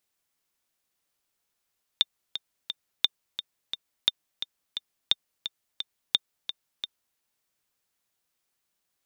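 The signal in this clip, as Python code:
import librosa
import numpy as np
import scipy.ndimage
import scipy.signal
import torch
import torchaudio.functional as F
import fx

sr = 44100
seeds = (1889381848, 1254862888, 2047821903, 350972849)

y = fx.click_track(sr, bpm=174, beats=3, bars=5, hz=3610.0, accent_db=11.0, level_db=-6.5)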